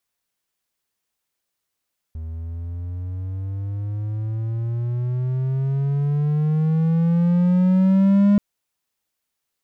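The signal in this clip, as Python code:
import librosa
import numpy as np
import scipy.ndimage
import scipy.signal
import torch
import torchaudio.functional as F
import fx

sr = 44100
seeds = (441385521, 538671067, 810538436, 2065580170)

y = fx.riser_tone(sr, length_s=6.23, level_db=-9.5, wave='triangle', hz=79.0, rise_st=16.5, swell_db=16.5)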